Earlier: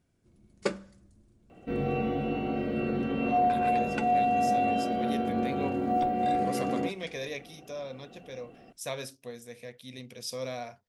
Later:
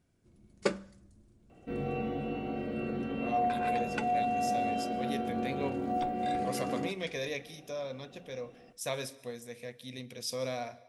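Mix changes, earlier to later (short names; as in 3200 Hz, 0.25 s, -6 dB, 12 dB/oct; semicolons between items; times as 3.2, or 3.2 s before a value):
second sound -5.5 dB; reverb: on, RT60 1.1 s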